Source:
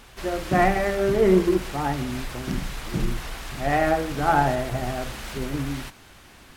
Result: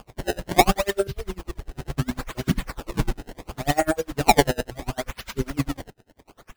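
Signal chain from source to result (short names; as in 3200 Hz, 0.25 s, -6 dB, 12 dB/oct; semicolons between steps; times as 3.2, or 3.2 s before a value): reverb removal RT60 1.5 s; 1.07–1.98 EQ curve 100 Hz 0 dB, 260 Hz -25 dB, 690 Hz -16 dB, 1300 Hz -21 dB, 3800 Hz -2 dB, 6300 Hz -4 dB, 14000 Hz +5 dB; in parallel at +2 dB: vocal rider 2 s; on the sum: decimation with a swept rate 22×, swing 160% 0.71 Hz; dB-linear tremolo 10 Hz, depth 30 dB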